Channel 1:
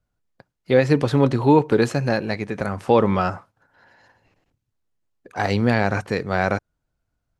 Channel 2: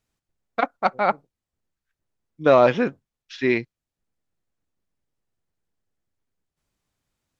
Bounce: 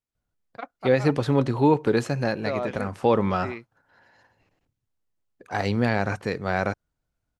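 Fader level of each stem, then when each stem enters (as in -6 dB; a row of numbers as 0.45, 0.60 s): -4.0, -14.5 dB; 0.15, 0.00 s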